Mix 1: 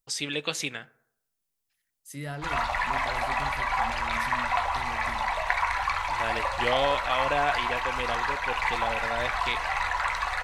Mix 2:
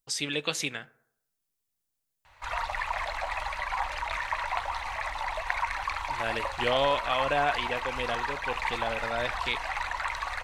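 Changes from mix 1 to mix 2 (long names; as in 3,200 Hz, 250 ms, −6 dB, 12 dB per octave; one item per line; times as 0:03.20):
second voice: muted
background: send off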